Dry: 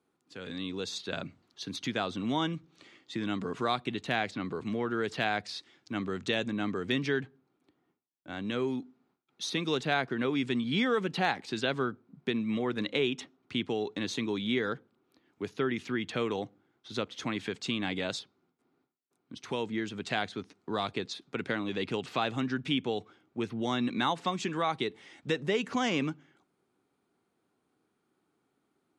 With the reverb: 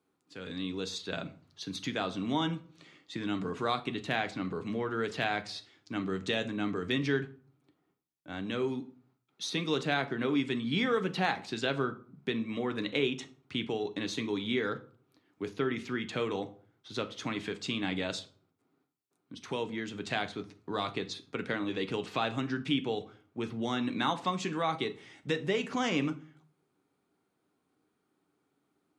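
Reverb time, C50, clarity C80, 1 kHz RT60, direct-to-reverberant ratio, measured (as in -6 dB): 0.45 s, 16.5 dB, 21.0 dB, 0.45 s, 8.0 dB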